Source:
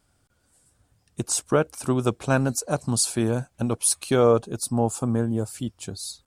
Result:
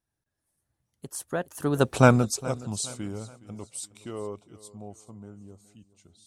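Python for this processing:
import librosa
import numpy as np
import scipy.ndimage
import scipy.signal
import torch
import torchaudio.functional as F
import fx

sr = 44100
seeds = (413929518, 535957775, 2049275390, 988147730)

y = fx.doppler_pass(x, sr, speed_mps=44, closest_m=5.6, pass_at_s=1.99)
y = fx.echo_feedback(y, sr, ms=418, feedback_pct=38, wet_db=-19.0)
y = y * 10.0 ** (6.0 / 20.0)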